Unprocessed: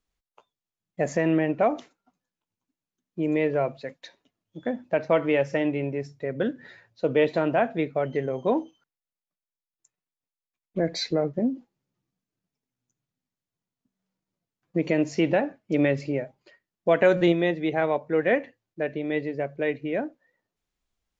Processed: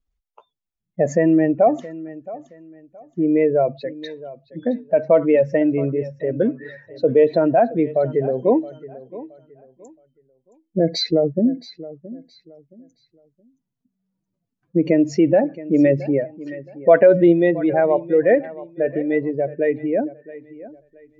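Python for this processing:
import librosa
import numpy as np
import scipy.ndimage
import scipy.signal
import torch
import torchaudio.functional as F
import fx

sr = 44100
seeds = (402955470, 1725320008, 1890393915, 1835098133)

p1 = fx.spec_expand(x, sr, power=1.7)
p2 = fx.peak_eq(p1, sr, hz=1500.0, db=8.5, octaves=1.3, at=(16.04, 16.99))
p3 = p2 + fx.echo_feedback(p2, sr, ms=671, feedback_pct=28, wet_db=-17.5, dry=0)
y = p3 * librosa.db_to_amplitude(7.5)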